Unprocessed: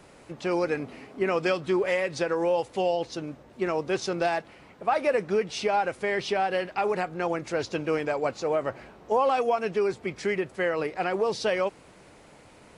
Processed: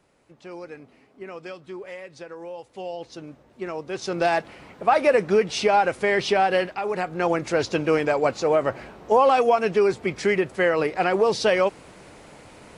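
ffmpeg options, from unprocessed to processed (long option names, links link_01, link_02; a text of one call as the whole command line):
ffmpeg -i in.wav -af "volume=14.5dB,afade=type=in:start_time=2.6:duration=0.65:silence=0.398107,afade=type=in:start_time=3.93:duration=0.44:silence=0.316228,afade=type=out:start_time=6.63:duration=0.17:silence=0.375837,afade=type=in:start_time=6.8:duration=0.5:silence=0.375837" out.wav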